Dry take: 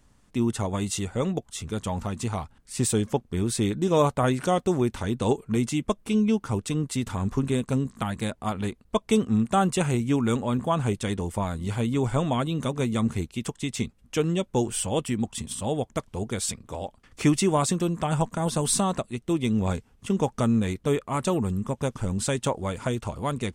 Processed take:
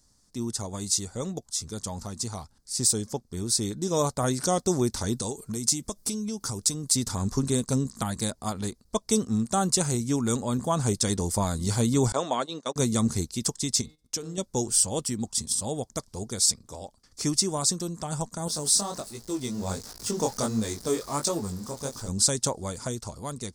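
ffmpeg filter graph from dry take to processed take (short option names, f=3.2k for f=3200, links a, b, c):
-filter_complex "[0:a]asettb=1/sr,asplit=3[a][b][c];[a]atrim=end=5.144[d];[b]atrim=start=5.14:end=6.95,asetpts=PTS-STARTPTS,afade=t=in:d=0.004:c=qsin,afade=t=out:st=1.806:d=0.004:c=qsin,highshelf=f=6.2k:g=8.5,acompressor=threshold=-28dB:ratio=6:attack=3.2:release=140:knee=1:detection=peak[e];[c]atrim=start=6.946[f];[d][e]acrossfade=d=0.004:c1=hsin:c2=qsin[g];[g][f]acrossfade=d=0.004:c1=qsin:c2=hsin,asettb=1/sr,asplit=3[h][i][j];[h]atrim=end=12.124[k];[i]atrim=start=12.12:end=12.76,asetpts=PTS-STARTPTS,afade=t=in:d=0.004:c=qsin,afade=t=out:st=0.636:d=0.004:c=qsin,agate=range=-25dB:threshold=-28dB:ratio=16:release=100:detection=peak,highpass=430,lowpass=4.9k[l];[j]atrim=start=12.756[m];[k][l]acrossfade=d=0.004:c1=hsin:c2=qsin[n];[n][m]acrossfade=d=0.004:c1=qsin:c2=hsin,asettb=1/sr,asplit=3[o][p][q];[o]atrim=end=13.814[r];[p]atrim=start=13.81:end=14.38,asetpts=PTS-STARTPTS,afade=t=in:d=0.004:c=qsin,afade=t=out:st=0.566:d=0.004:c=qsin,bandreject=f=153.8:t=h:w=4,bandreject=f=307.6:t=h:w=4,bandreject=f=461.4:t=h:w=4,bandreject=f=615.2:t=h:w=4,bandreject=f=769:t=h:w=4,bandreject=f=922.8:t=h:w=4,bandreject=f=1.0766k:t=h:w=4,bandreject=f=1.2304k:t=h:w=4,bandreject=f=1.3842k:t=h:w=4,bandreject=f=1.538k:t=h:w=4,bandreject=f=1.6918k:t=h:w=4,bandreject=f=1.8456k:t=h:w=4,bandreject=f=1.9994k:t=h:w=4,bandreject=f=2.1532k:t=h:w=4,bandreject=f=2.307k:t=h:w=4,bandreject=f=2.4608k:t=h:w=4,bandreject=f=2.6146k:t=h:w=4,bandreject=f=2.7684k:t=h:w=4,bandreject=f=2.9222k:t=h:w=4,bandreject=f=3.076k:t=h:w=4,bandreject=f=3.2298k:t=h:w=4,bandreject=f=3.3836k:t=h:w=4,bandreject=f=3.5374k:t=h:w=4,bandreject=f=3.6912k:t=h:w=4,bandreject=f=3.845k:t=h:w=4,bandreject=f=3.9988k:t=h:w=4,bandreject=f=4.1526k:t=h:w=4,bandreject=f=4.3064k:t=h:w=4,bandreject=f=4.4602k:t=h:w=4,bandreject=f=4.614k:t=h:w=4,bandreject=f=4.7678k:t=h:w=4,agate=range=-13dB:threshold=-54dB:ratio=16:release=100:detection=peak,acompressor=threshold=-33dB:ratio=2.5:attack=3.2:release=140:knee=1:detection=peak[s];[q]atrim=start=14.376[t];[r][s]acrossfade=d=0.004:c1=hsin:c2=qsin[u];[u][t]acrossfade=d=0.004:c1=qsin:c2=hsin,asettb=1/sr,asplit=3[v][w][x];[v]atrim=end=18.484[y];[w]atrim=start=18.48:end=22.08,asetpts=PTS-STARTPTS,afade=t=in:d=0.004:c=qsin,afade=t=out:st=3.596:d=0.004:c=qsin,aeval=exprs='val(0)+0.5*0.0133*sgn(val(0))':c=same,bass=f=250:g=-6,treble=f=4k:g=-2,flanger=delay=18:depth=6.4:speed=1.4[z];[x]atrim=start=22.076[aa];[y][z]acrossfade=d=0.004:c1=hsin:c2=qsin[ab];[ab][aa]acrossfade=d=0.004:c1=qsin:c2=hsin,highshelf=f=3.7k:t=q:w=3:g=10,dynaudnorm=f=170:g=11:m=11.5dB,volume=-7.5dB"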